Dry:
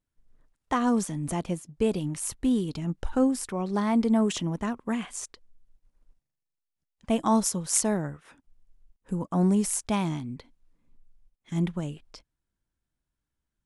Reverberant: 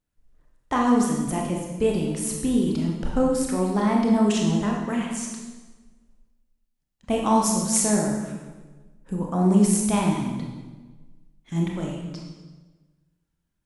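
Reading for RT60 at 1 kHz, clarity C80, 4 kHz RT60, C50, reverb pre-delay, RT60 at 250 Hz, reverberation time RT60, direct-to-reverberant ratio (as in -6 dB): 1.2 s, 5.0 dB, 1.1 s, 2.5 dB, 23 ms, 1.4 s, 1.3 s, -1.0 dB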